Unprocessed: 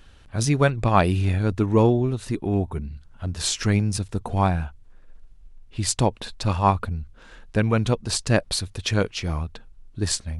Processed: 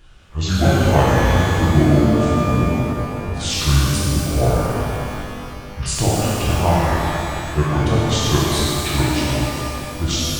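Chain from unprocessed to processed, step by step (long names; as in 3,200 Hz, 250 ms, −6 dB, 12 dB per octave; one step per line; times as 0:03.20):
pitch shifter swept by a sawtooth −9.5 semitones, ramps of 651 ms
reverb with rising layers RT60 2.8 s, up +12 semitones, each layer −8 dB, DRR −7.5 dB
level −1.5 dB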